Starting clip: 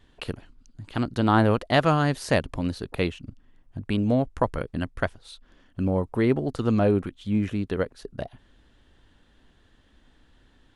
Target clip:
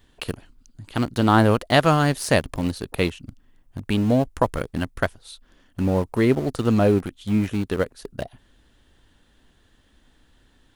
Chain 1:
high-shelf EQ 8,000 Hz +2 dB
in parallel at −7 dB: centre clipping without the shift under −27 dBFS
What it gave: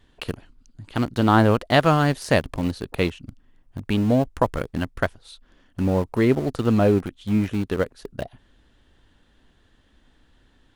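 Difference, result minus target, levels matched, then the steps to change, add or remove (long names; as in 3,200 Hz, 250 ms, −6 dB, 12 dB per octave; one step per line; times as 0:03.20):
8,000 Hz band −5.5 dB
change: high-shelf EQ 8,000 Hz +13.5 dB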